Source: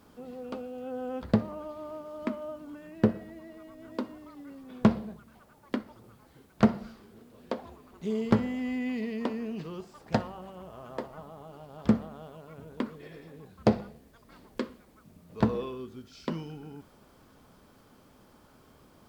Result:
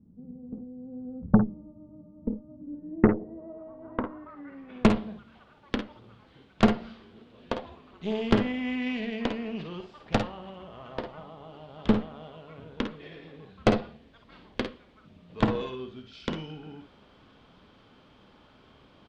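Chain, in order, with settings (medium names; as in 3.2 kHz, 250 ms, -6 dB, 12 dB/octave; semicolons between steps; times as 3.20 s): low-pass sweep 190 Hz -> 3.3 kHz, 2.48–4.98 s; Chebyshev shaper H 8 -17 dB, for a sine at -5.5 dBFS; early reflections 52 ms -8.5 dB, 62 ms -13.5 dB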